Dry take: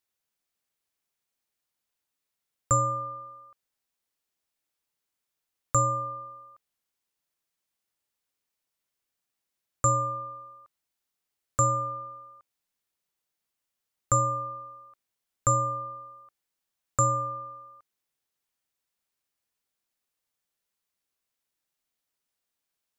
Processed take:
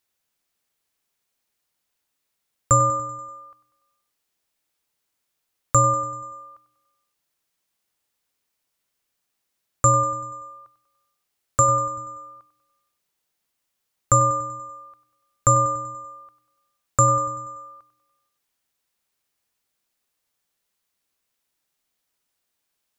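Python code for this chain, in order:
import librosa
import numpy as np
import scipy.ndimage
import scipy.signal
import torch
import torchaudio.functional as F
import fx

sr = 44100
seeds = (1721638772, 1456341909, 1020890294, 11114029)

p1 = fx.hum_notches(x, sr, base_hz=60, count=5, at=(10.48, 11.98))
p2 = p1 + fx.echo_feedback(p1, sr, ms=96, feedback_pct=56, wet_db=-14.0, dry=0)
y = F.gain(torch.from_numpy(p2), 6.5).numpy()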